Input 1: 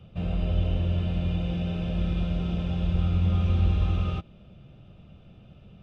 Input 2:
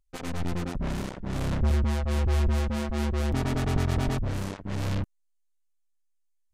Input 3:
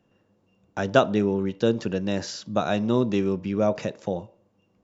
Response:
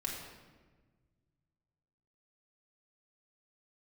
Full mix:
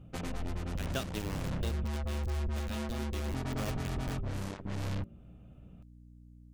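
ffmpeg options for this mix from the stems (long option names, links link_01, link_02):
-filter_complex "[0:a]lowpass=2100,volume=-6dB,asplit=3[link_01][link_02][link_03];[link_01]atrim=end=1.87,asetpts=PTS-STARTPTS,afade=type=out:start_time=1.866:duration=0.004:curve=hsin[link_04];[link_02]atrim=start=1.87:end=3.7,asetpts=PTS-STARTPTS,volume=0[link_05];[link_03]atrim=start=3.7,asetpts=PTS-STARTPTS,afade=type=in:duration=0.004:curve=hsin[link_06];[link_04][link_05][link_06]concat=n=3:v=0:a=1[link_07];[1:a]aeval=exprs='val(0)+0.00251*(sin(2*PI*60*n/s)+sin(2*PI*2*60*n/s)/2+sin(2*PI*3*60*n/s)/3+sin(2*PI*4*60*n/s)/4+sin(2*PI*5*60*n/s)/5)':channel_layout=same,bandreject=frequency=56.33:width_type=h:width=4,bandreject=frequency=112.66:width_type=h:width=4,bandreject=frequency=168.99:width_type=h:width=4,bandreject=frequency=225.32:width_type=h:width=4,bandreject=frequency=281.65:width_type=h:width=4,bandreject=frequency=337.98:width_type=h:width=4,bandreject=frequency=394.31:width_type=h:width=4,bandreject=frequency=450.64:width_type=h:width=4,bandreject=frequency=506.97:width_type=h:width=4,bandreject=frequency=563.3:width_type=h:width=4,volume=0dB[link_08];[2:a]highshelf=frequency=2800:gain=12,aeval=exprs='val(0)*gte(abs(val(0)),0.133)':channel_layout=same,equalizer=frequency=890:width_type=o:width=1.7:gain=-6,volume=3.5dB,afade=type=out:start_time=1.55:duration=0.45:silence=0.446684,afade=type=in:start_time=3.05:duration=0.65:silence=0.375837[link_09];[link_07][link_08][link_09]amix=inputs=3:normalize=0,acompressor=threshold=-36dB:ratio=2.5"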